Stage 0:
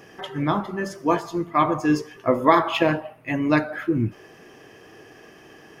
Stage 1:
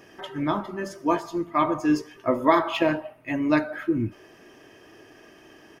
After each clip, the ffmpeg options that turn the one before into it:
ffmpeg -i in.wav -af "aecho=1:1:3.2:0.34,volume=-3.5dB" out.wav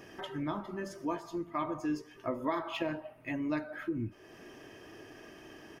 ffmpeg -i in.wav -af "lowshelf=frequency=200:gain=4,acompressor=threshold=-39dB:ratio=2,volume=-1.5dB" out.wav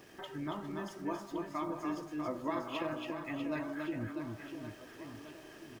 ffmpeg -i in.wav -af "aeval=exprs='val(0)*gte(abs(val(0)),0.00211)':channel_layout=same,aecho=1:1:280|644|1117|1732|2532:0.631|0.398|0.251|0.158|0.1,volume=-4dB" out.wav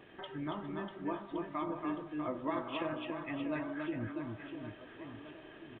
ffmpeg -i in.wav -af "aresample=8000,aresample=44100" out.wav

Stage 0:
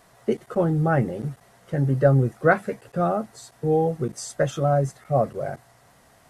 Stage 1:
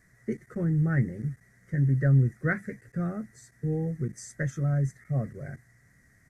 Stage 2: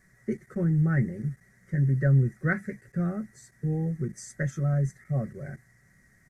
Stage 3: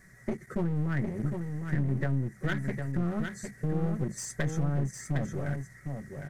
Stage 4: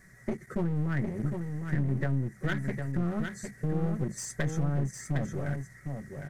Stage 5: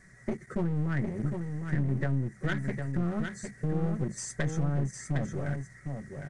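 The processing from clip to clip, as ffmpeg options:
ffmpeg -i in.wav -af "firequalizer=gain_entry='entry(110,0);entry(580,-18);entry(860,-25);entry(1900,3);entry(2800,-25);entry(6000,-7);entry(10000,-11)':delay=0.05:min_phase=1" out.wav
ffmpeg -i in.wav -af "aecho=1:1:5.3:0.35" out.wav
ffmpeg -i in.wav -filter_complex "[0:a]acompressor=threshold=-30dB:ratio=6,aeval=exprs='clip(val(0),-1,0.0106)':channel_layout=same,asplit=2[link_01][link_02];[link_02]aecho=0:1:757:0.501[link_03];[link_01][link_03]amix=inputs=2:normalize=0,volume=5.5dB" out.wav
ffmpeg -i in.wav -af anull out.wav
ffmpeg -i in.wav -af "aresample=22050,aresample=44100" out.wav

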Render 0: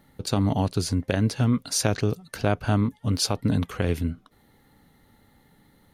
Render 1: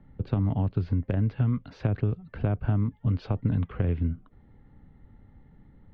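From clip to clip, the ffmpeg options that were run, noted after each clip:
ffmpeg -i in.wav -filter_complex "[0:a]lowpass=frequency=3100:width=0.5412,lowpass=frequency=3100:width=1.3066,aemphasis=mode=reproduction:type=riaa,acrossover=split=110|920[link_01][link_02][link_03];[link_01]acompressor=threshold=-25dB:ratio=4[link_04];[link_02]acompressor=threshold=-21dB:ratio=4[link_05];[link_03]acompressor=threshold=-37dB:ratio=4[link_06];[link_04][link_05][link_06]amix=inputs=3:normalize=0,volume=-5.5dB" out.wav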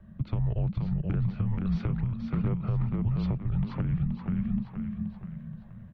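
ffmpeg -i in.wav -filter_complex "[0:a]asplit=2[link_01][link_02];[link_02]asplit=6[link_03][link_04][link_05][link_06][link_07][link_08];[link_03]adelay=476,afreqshift=-52,volume=-4dB[link_09];[link_04]adelay=952,afreqshift=-104,volume=-11.1dB[link_10];[link_05]adelay=1428,afreqshift=-156,volume=-18.3dB[link_11];[link_06]adelay=1904,afreqshift=-208,volume=-25.4dB[link_12];[link_07]adelay=2380,afreqshift=-260,volume=-32.5dB[link_13];[link_08]adelay=2856,afreqshift=-312,volume=-39.7dB[link_14];[link_09][link_10][link_11][link_12][link_13][link_14]amix=inputs=6:normalize=0[link_15];[link_01][link_15]amix=inputs=2:normalize=0,afreqshift=-230,alimiter=limit=-22.5dB:level=0:latency=1:release=380,volume=3dB" out.wav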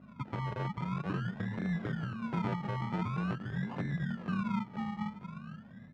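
ffmpeg -i in.wav -af "acrusher=samples=33:mix=1:aa=0.000001:lfo=1:lforange=19.8:lforate=0.46,aeval=exprs='val(0)+0.00631*(sin(2*PI*50*n/s)+sin(2*PI*2*50*n/s)/2+sin(2*PI*3*50*n/s)/3+sin(2*PI*4*50*n/s)/4+sin(2*PI*5*50*n/s)/5)':channel_layout=same,highpass=210,lowpass=2000" out.wav

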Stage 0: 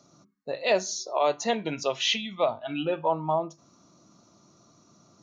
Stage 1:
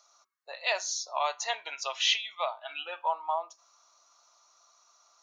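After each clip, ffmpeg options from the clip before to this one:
ffmpeg -i in.wav -af "highpass=frequency=810:width=0.5412,highpass=frequency=810:width=1.3066" out.wav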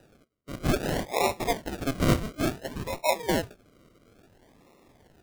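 ffmpeg -i in.wav -filter_complex "[0:a]asplit=2[link_01][link_02];[link_02]asoftclip=type=tanh:threshold=-27.5dB,volume=-6.5dB[link_03];[link_01][link_03]amix=inputs=2:normalize=0,acrusher=samples=40:mix=1:aa=0.000001:lfo=1:lforange=24:lforate=0.58,volume=2.5dB" out.wav

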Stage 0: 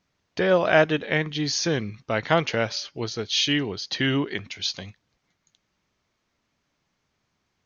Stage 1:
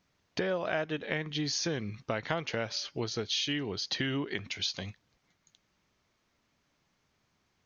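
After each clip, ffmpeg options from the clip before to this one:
ffmpeg -i in.wav -af "acompressor=threshold=-30dB:ratio=5" out.wav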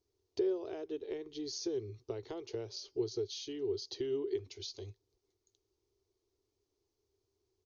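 ffmpeg -i in.wav -af "firequalizer=gain_entry='entry(110,0);entry(160,-26);entry(390,13);entry(550,-10);entry(850,-9);entry(1600,-21);entry(4500,-4)':delay=0.05:min_phase=1,volume=-5dB" out.wav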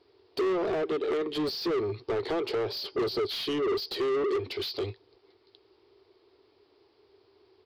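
ffmpeg -i in.wav -filter_complex "[0:a]aresample=11025,aresample=44100,asplit=2[link_01][link_02];[link_02]highpass=frequency=720:poles=1,volume=32dB,asoftclip=type=tanh:threshold=-21.5dB[link_03];[link_01][link_03]amix=inputs=2:normalize=0,lowpass=frequency=2000:poles=1,volume=-6dB,volume=1dB" out.wav

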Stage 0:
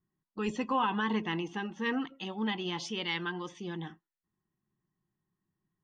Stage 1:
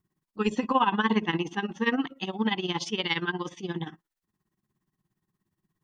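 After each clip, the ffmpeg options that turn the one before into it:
ffmpeg -i in.wav -af "tremolo=f=17:d=0.82,volume=9dB" out.wav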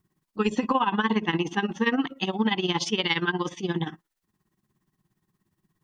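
ffmpeg -i in.wav -af "acompressor=threshold=-25dB:ratio=6,volume=5.5dB" out.wav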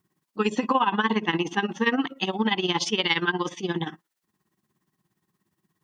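ffmpeg -i in.wav -af "highpass=frequency=210:poles=1,volume=2dB" out.wav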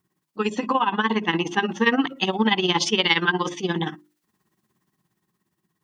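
ffmpeg -i in.wav -af "bandreject=frequency=50:width_type=h:width=6,bandreject=frequency=100:width_type=h:width=6,bandreject=frequency=150:width_type=h:width=6,bandreject=frequency=200:width_type=h:width=6,bandreject=frequency=250:width_type=h:width=6,bandreject=frequency=300:width_type=h:width=6,bandreject=frequency=350:width_type=h:width=6,dynaudnorm=framelen=240:gausssize=11:maxgain=7dB" out.wav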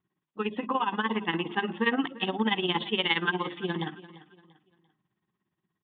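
ffmpeg -i in.wav -af "aecho=1:1:343|686|1029:0.126|0.0441|0.0154,aresample=8000,aresample=44100,volume=-6.5dB" out.wav

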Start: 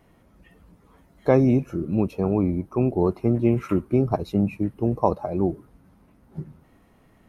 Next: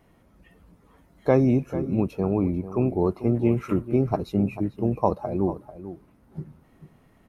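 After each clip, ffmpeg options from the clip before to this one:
ffmpeg -i in.wav -filter_complex "[0:a]asplit=2[link_01][link_02];[link_02]adelay=443.1,volume=-13dB,highshelf=frequency=4000:gain=-9.97[link_03];[link_01][link_03]amix=inputs=2:normalize=0,volume=-1.5dB" out.wav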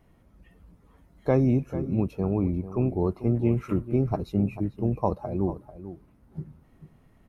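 ffmpeg -i in.wav -af "lowshelf=frequency=130:gain=9,volume=-4.5dB" out.wav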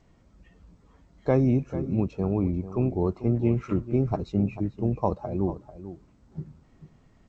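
ffmpeg -i in.wav -ar 16000 -c:a g722 out.g722

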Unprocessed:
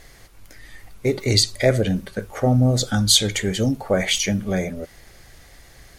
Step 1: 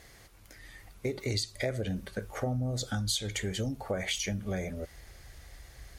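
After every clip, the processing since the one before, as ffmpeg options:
ffmpeg -i in.wav -af "asubboost=boost=3.5:cutoff=91,highpass=41,acompressor=threshold=-24dB:ratio=4,volume=-6dB" out.wav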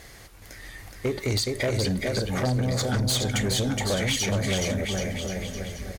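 ffmpeg -i in.wav -filter_complex "[0:a]asplit=2[link_01][link_02];[link_02]aecho=0:1:420|777|1080|1338|1558:0.631|0.398|0.251|0.158|0.1[link_03];[link_01][link_03]amix=inputs=2:normalize=0,aeval=exprs='0.178*sin(PI/2*2.82*val(0)/0.178)':channel_layout=same,volume=-5dB" out.wav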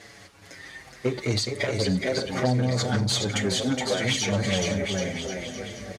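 ffmpeg -i in.wav -filter_complex "[0:a]highpass=120,lowpass=7300,aecho=1:1:521:0.141,asplit=2[link_01][link_02];[link_02]adelay=6.5,afreqshift=-0.67[link_03];[link_01][link_03]amix=inputs=2:normalize=1,volume=4dB" out.wav

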